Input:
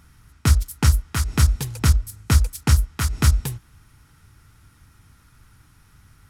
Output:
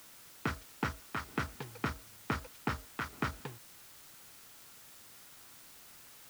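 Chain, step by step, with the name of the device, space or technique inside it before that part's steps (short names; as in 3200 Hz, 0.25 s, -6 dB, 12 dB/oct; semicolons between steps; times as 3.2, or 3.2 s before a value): wax cylinder (BPF 280–2100 Hz; wow and flutter; white noise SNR 13 dB); gain -6 dB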